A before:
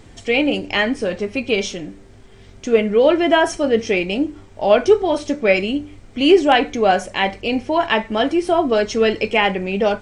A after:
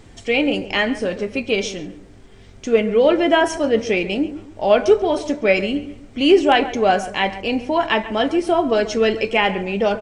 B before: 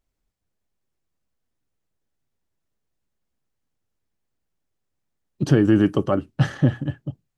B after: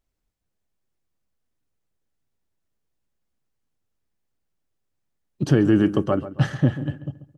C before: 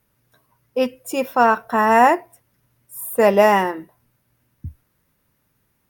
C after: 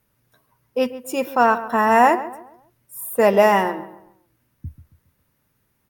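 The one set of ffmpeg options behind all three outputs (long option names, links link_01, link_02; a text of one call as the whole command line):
ffmpeg -i in.wav -filter_complex "[0:a]asplit=2[link_01][link_02];[link_02]adelay=137,lowpass=frequency=2000:poles=1,volume=-13.5dB,asplit=2[link_03][link_04];[link_04]adelay=137,lowpass=frequency=2000:poles=1,volume=0.37,asplit=2[link_05][link_06];[link_06]adelay=137,lowpass=frequency=2000:poles=1,volume=0.37,asplit=2[link_07][link_08];[link_08]adelay=137,lowpass=frequency=2000:poles=1,volume=0.37[link_09];[link_01][link_03][link_05][link_07][link_09]amix=inputs=5:normalize=0,volume=-1dB" out.wav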